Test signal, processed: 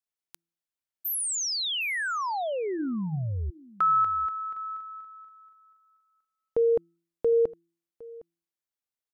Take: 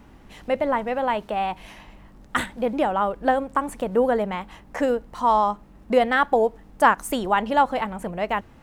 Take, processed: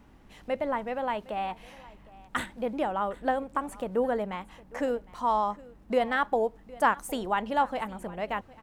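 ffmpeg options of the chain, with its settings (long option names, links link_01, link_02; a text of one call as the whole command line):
ffmpeg -i in.wav -filter_complex "[0:a]bandreject=frequency=168.7:width_type=h:width=4,bandreject=frequency=337.4:width_type=h:width=4,asplit=2[link_01][link_02];[link_02]aecho=0:1:760:0.0891[link_03];[link_01][link_03]amix=inputs=2:normalize=0,volume=-7dB" out.wav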